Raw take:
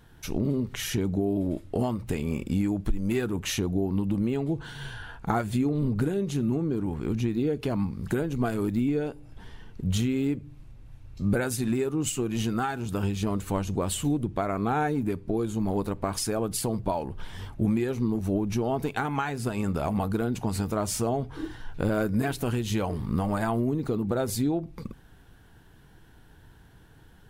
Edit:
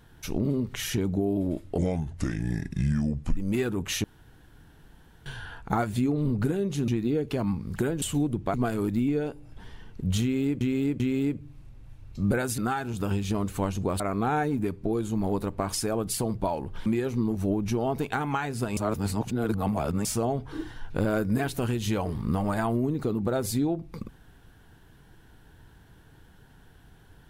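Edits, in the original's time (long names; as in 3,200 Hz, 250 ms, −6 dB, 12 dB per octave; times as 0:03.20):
0:01.78–0:02.94: play speed 73%
0:03.61–0:04.83: fill with room tone
0:06.45–0:07.20: remove
0:10.02–0:10.41: repeat, 3 plays
0:11.60–0:12.50: remove
0:13.92–0:14.44: move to 0:08.34
0:17.30–0:17.70: remove
0:19.61–0:20.89: reverse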